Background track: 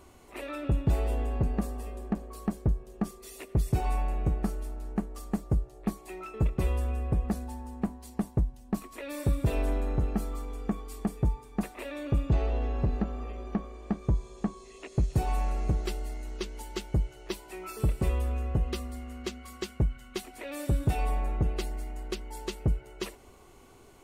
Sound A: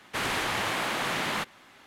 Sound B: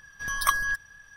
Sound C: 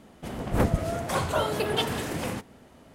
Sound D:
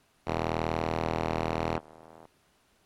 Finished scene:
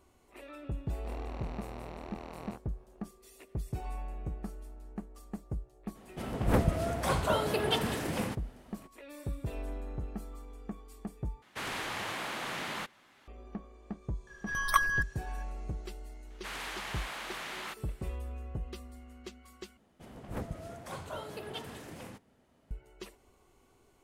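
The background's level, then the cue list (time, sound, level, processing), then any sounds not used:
background track −10.5 dB
0:00.78: mix in D −12 dB + chorus effect 1.1 Hz, delay 15.5 ms, depth 6.7 ms
0:05.94: mix in C −3 dB, fades 0.02 s + parametric band 6,700 Hz −2.5 dB 0.34 octaves
0:11.42: overwrite with A −8 dB
0:14.27: mix in B −0.5 dB + high-shelf EQ 3,200 Hz −9 dB
0:16.30: mix in A −10 dB + low-shelf EQ 480 Hz −8.5 dB
0:19.77: overwrite with C −15 dB

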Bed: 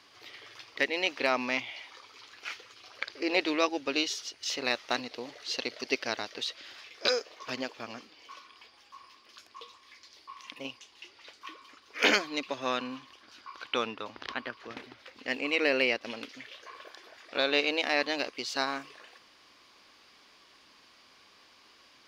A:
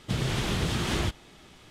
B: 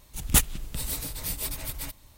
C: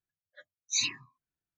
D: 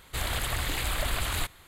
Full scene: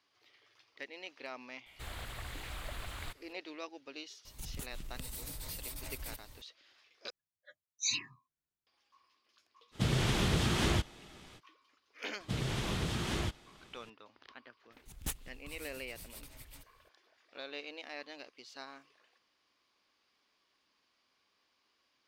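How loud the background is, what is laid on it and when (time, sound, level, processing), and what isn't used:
bed −17.5 dB
0:01.66: mix in D −13 dB + slew-rate limiting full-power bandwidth 84 Hz
0:04.25: mix in B −1.5 dB + downward compressor 20 to 1, threshold −37 dBFS
0:07.10: overwrite with C −4.5 dB
0:09.71: mix in A −2 dB, fades 0.05 s
0:12.20: mix in A −7 dB
0:14.72: mix in B −17.5 dB + highs frequency-modulated by the lows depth 0.5 ms

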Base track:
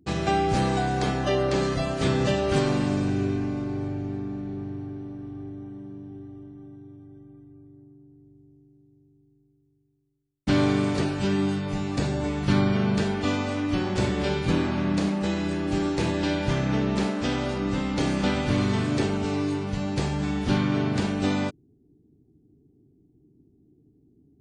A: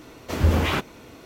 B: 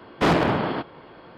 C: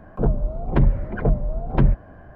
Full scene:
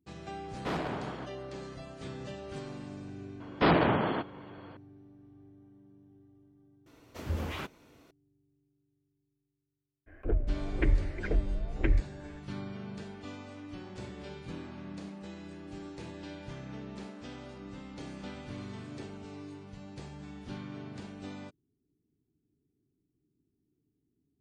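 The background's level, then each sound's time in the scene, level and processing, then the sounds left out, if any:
base track −18.5 dB
0:00.44: mix in B −15 dB
0:03.40: mix in B −4.5 dB + gate on every frequency bin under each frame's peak −30 dB strong
0:06.86: mix in A −14.5 dB
0:10.06: mix in C −7.5 dB, fades 0.02 s + drawn EQ curve 100 Hz 0 dB, 170 Hz −23 dB, 310 Hz +3 dB, 1,000 Hz −13 dB, 2,100 Hz +13 dB, 4,100 Hz −3 dB

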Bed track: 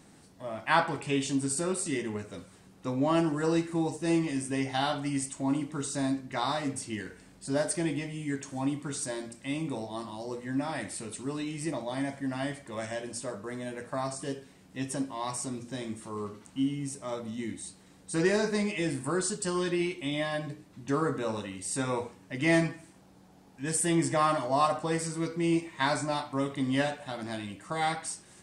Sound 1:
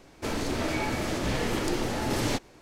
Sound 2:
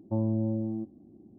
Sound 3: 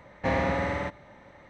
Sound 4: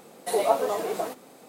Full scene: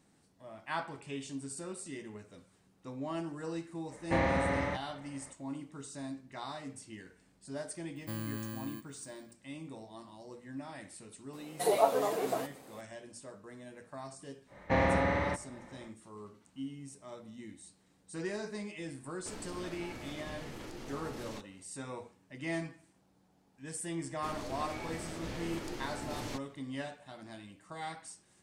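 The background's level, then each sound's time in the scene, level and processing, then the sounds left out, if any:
bed track −12 dB
0:03.87: mix in 3 −3.5 dB, fades 0.05 s
0:07.96: mix in 2 −11.5 dB + samples in bit-reversed order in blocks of 32 samples
0:11.33: mix in 4 −4 dB
0:14.46: mix in 3 −1.5 dB, fades 0.10 s + high-shelf EQ 6,600 Hz −7 dB
0:19.03: mix in 1 −14.5 dB + brickwall limiter −21.5 dBFS
0:24.00: mix in 1 −13 dB

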